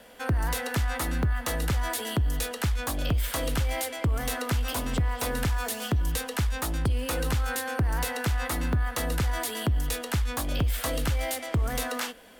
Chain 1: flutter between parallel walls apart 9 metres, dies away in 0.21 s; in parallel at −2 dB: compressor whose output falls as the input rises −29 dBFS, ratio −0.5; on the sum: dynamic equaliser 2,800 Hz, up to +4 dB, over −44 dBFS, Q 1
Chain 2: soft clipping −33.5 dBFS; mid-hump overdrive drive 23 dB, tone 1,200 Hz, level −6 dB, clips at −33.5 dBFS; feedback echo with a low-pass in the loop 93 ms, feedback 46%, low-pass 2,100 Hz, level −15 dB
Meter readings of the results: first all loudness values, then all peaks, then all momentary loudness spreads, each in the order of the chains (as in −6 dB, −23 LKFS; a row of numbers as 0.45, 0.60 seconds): −24.0, −40.0 LKFS; −10.5, −32.0 dBFS; 2, 2 LU